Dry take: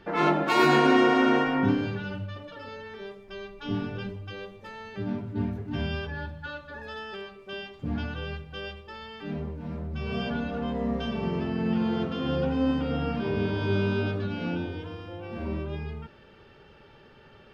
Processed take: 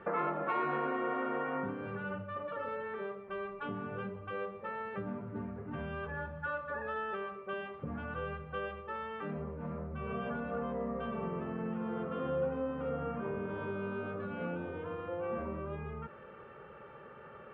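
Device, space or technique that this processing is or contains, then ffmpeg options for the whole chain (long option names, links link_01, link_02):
bass amplifier: -filter_complex "[0:a]acompressor=threshold=-36dB:ratio=4,highpass=80,equalizer=frequency=98:width_type=q:width=4:gain=-8,equalizer=frequency=290:width_type=q:width=4:gain=-6,equalizer=frequency=520:width_type=q:width=4:gain=8,equalizer=frequency=1200:width_type=q:width=4:gain=10,lowpass=frequency=2300:width=0.5412,lowpass=frequency=2300:width=1.3066,asettb=1/sr,asplit=3[link_01][link_02][link_03];[link_01]atrim=end=12.894[link_04];[link_02]atrim=start=12.89:end=13.5,asetpts=PTS-STARTPTS,afade=type=in:duration=0.004:curve=qsin,afade=type=out:start_time=0.606:duration=0.004:curve=qsin,equalizer=frequency=4300:width=1.7:gain=-9[link_05];[link_03]atrim=start=13.496[link_06];[link_04][link_05]acrossfade=duration=0.004:curve1=hsin:curve2=qsin[link_07];[link_07][link_06]acrossfade=duration=0.004:curve1=qsin:curve2=hsin"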